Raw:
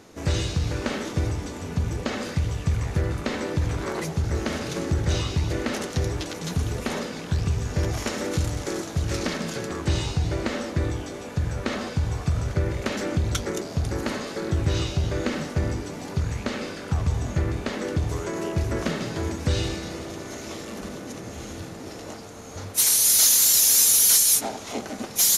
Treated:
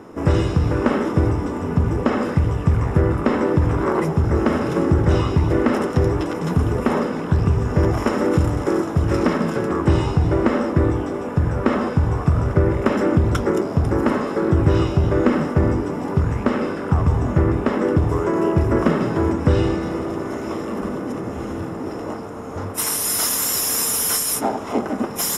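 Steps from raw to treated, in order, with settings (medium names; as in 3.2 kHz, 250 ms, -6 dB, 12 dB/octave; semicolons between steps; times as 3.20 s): 19.33–19.81 s: treble shelf 12 kHz -9.5 dB; reverberation RT60 0.60 s, pre-delay 3 ms, DRR 18.5 dB; trim -1 dB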